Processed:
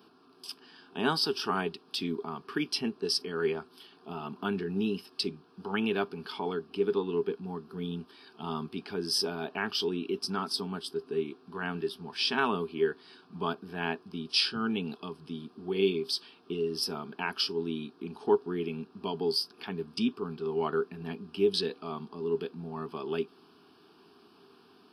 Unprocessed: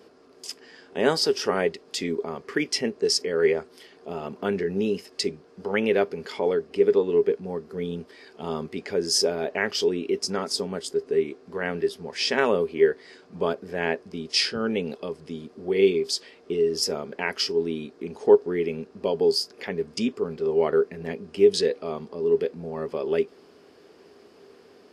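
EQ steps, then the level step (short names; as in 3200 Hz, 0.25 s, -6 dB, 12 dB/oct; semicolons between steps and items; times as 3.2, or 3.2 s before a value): HPF 130 Hz 12 dB/oct; fixed phaser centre 2000 Hz, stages 6; 0.0 dB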